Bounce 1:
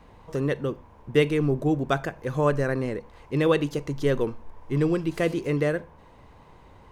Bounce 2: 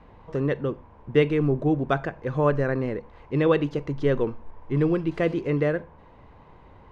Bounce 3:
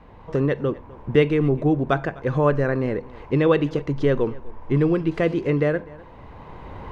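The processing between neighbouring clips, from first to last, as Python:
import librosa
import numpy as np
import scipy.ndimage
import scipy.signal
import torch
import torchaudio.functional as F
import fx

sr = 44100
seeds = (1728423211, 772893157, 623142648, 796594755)

y1 = scipy.signal.sosfilt(scipy.signal.bessel(2, 2600.0, 'lowpass', norm='mag', fs=sr, output='sos'), x)
y1 = y1 * 10.0 ** (1.0 / 20.0)
y2 = fx.recorder_agc(y1, sr, target_db=-15.0, rise_db_per_s=10.0, max_gain_db=30)
y2 = y2 + 10.0 ** (-22.0 / 20.0) * np.pad(y2, (int(252 * sr / 1000.0), 0))[:len(y2)]
y2 = y2 * 10.0 ** (2.5 / 20.0)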